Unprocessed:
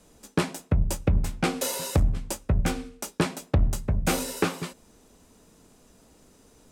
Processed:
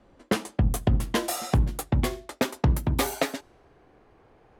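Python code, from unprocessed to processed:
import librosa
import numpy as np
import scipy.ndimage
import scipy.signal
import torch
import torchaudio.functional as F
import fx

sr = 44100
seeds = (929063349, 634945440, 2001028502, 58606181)

y = fx.speed_glide(x, sr, from_pct=118, to_pct=174)
y = fx.env_lowpass(y, sr, base_hz=2400.0, full_db=-23.0)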